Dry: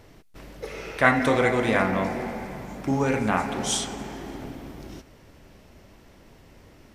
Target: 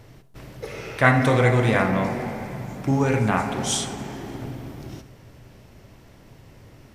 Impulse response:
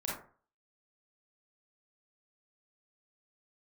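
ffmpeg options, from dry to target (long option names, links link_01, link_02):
-filter_complex "[0:a]equalizer=frequency=120:width_type=o:width=0.48:gain=11,asplit=2[link_01][link_02];[1:a]atrim=start_sample=2205,asetrate=29988,aresample=44100,highshelf=frequency=8200:gain=9.5[link_03];[link_02][link_03]afir=irnorm=-1:irlink=0,volume=-17dB[link_04];[link_01][link_04]amix=inputs=2:normalize=0"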